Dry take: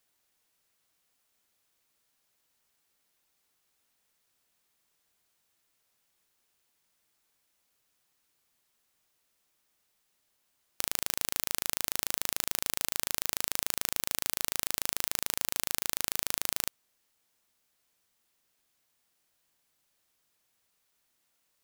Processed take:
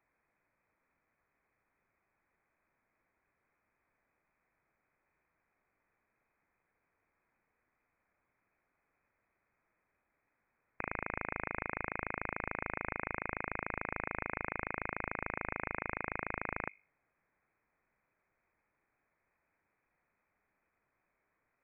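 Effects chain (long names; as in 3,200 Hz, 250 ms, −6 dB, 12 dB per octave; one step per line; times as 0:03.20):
mains-hum notches 50/100/150/200/250/300/350/400 Hz
voice inversion scrambler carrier 2,500 Hz
level +3 dB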